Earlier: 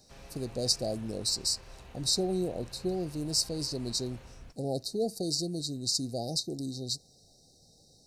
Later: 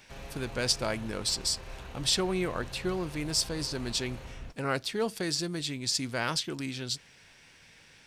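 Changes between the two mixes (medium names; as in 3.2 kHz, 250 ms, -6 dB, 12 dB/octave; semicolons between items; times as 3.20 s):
speech: remove brick-wall FIR band-stop 820–3700 Hz; background +6.5 dB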